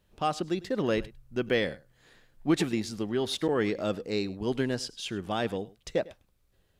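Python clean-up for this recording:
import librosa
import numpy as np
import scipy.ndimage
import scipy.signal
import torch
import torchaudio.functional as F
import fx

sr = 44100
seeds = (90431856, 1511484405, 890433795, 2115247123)

y = fx.fix_interpolate(x, sr, at_s=(1.49, 3.48), length_ms=8.3)
y = fx.fix_echo_inverse(y, sr, delay_ms=102, level_db=-20.5)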